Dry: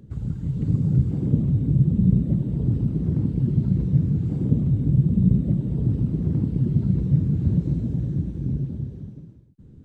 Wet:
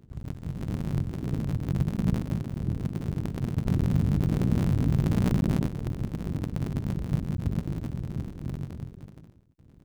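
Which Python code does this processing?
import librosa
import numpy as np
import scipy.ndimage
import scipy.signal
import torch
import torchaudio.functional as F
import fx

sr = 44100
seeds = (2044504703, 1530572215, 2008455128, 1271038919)

y = fx.cycle_switch(x, sr, every=3, mode='muted')
y = fx.env_flatten(y, sr, amount_pct=70, at=(3.66, 5.67))
y = F.gain(torch.from_numpy(y), -6.5).numpy()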